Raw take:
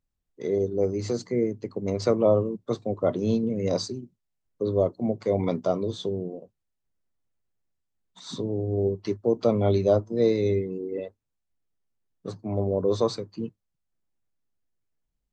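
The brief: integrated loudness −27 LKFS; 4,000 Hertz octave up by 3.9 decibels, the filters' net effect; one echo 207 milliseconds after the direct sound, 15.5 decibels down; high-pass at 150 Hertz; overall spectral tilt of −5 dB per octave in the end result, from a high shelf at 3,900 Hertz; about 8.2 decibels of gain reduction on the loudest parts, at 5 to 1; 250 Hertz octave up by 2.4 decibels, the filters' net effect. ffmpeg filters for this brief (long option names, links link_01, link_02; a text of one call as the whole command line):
ffmpeg -i in.wav -af "highpass=150,equalizer=frequency=250:width_type=o:gain=4,highshelf=frequency=3900:gain=-3.5,equalizer=frequency=4000:width_type=o:gain=6.5,acompressor=threshold=-24dB:ratio=5,aecho=1:1:207:0.168,volume=3.5dB" out.wav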